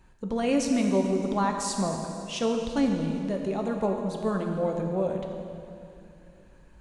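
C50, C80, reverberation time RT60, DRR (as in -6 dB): 4.0 dB, 5.0 dB, 2.6 s, 2.0 dB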